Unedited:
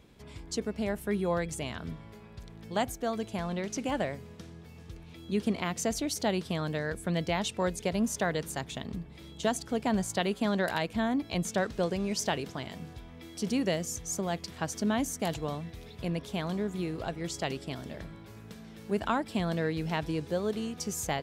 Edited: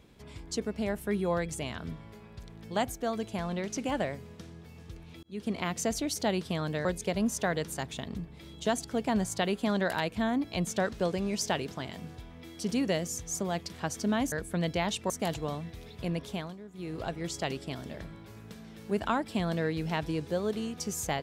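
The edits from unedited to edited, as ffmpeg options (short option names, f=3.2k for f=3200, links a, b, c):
-filter_complex "[0:a]asplit=7[a][b][c][d][e][f][g];[a]atrim=end=5.23,asetpts=PTS-STARTPTS,afade=t=out:st=5.226:d=0.004:c=hsin[h];[b]atrim=start=5.23:end=6.852,asetpts=PTS-STARTPTS,afade=t=in:d=0.39[i];[c]atrim=start=7.628:end=15.102[j];[d]atrim=start=6.848:end=7.632[k];[e]atrim=start=15.098:end=16.56,asetpts=PTS-STARTPTS,afade=t=out:st=1.202:d=0.26:silence=0.188365[l];[f]atrim=start=16.56:end=16.73,asetpts=PTS-STARTPTS,volume=-14.5dB[m];[g]atrim=start=16.73,asetpts=PTS-STARTPTS,afade=t=in:d=0.26:silence=0.188365[n];[h][i]concat=n=2:v=0:a=1[o];[o][j]acrossfade=d=0.004:c1=hsin:c2=hsin[p];[p][k]acrossfade=d=0.004:c1=hsin:c2=hsin[q];[l][m][n]concat=n=3:v=0:a=1[r];[q][r]acrossfade=d=0.004:c1=hsin:c2=hsin"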